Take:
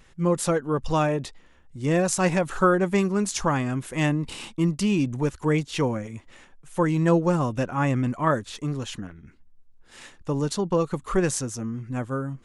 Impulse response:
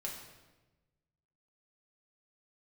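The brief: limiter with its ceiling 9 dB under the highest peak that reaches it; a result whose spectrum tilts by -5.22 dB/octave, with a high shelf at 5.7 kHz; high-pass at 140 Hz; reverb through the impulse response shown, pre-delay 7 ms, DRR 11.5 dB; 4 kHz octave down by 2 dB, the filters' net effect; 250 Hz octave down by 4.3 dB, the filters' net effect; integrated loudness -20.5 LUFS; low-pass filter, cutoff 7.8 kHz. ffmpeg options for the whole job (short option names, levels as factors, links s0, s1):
-filter_complex "[0:a]highpass=140,lowpass=7800,equalizer=f=250:t=o:g=-5.5,equalizer=f=4000:t=o:g=-5.5,highshelf=f=5700:g=7,alimiter=limit=0.15:level=0:latency=1,asplit=2[s0][s1];[1:a]atrim=start_sample=2205,adelay=7[s2];[s1][s2]afir=irnorm=-1:irlink=0,volume=0.266[s3];[s0][s3]amix=inputs=2:normalize=0,volume=2.51"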